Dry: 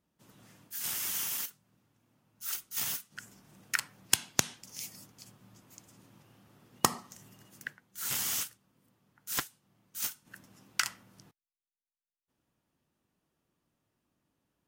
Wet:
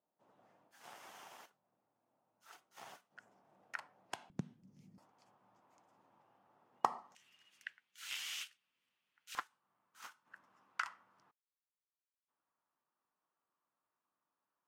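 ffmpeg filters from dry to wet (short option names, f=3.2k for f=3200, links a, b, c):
-af "asetnsamples=n=441:p=0,asendcmd='4.3 bandpass f 180;4.98 bandpass f 840;7.15 bandpass f 2700;9.35 bandpass f 1100',bandpass=f=720:t=q:w=2.2:csg=0"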